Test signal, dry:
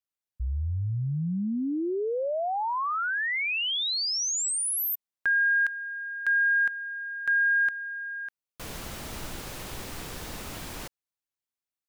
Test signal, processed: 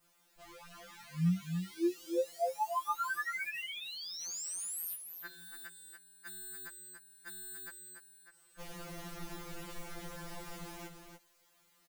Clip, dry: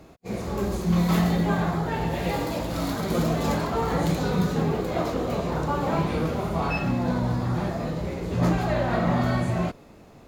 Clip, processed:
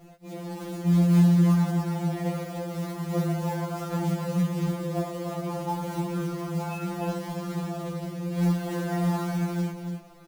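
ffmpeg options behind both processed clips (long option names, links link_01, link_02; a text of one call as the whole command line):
ffmpeg -i in.wav -filter_complex "[0:a]highshelf=frequency=2900:gain=-6,bandreject=frequency=2500:width=21,acompressor=mode=upward:threshold=-34dB:ratio=2.5:attack=0.22:release=28:knee=2.83:detection=peak,adynamicequalizer=threshold=0.00316:dfrequency=3700:dqfactor=1.5:tfrequency=3700:tqfactor=1.5:attack=5:release=100:ratio=0.333:range=3.5:mode=cutabove:tftype=bell,acrusher=bits=3:mode=log:mix=0:aa=0.000001,asplit=2[link_01][link_02];[link_02]aecho=0:1:288:0.447[link_03];[link_01][link_03]amix=inputs=2:normalize=0,afftfilt=real='re*2.83*eq(mod(b,8),0)':imag='im*2.83*eq(mod(b,8),0)':win_size=2048:overlap=0.75,volume=-5dB" out.wav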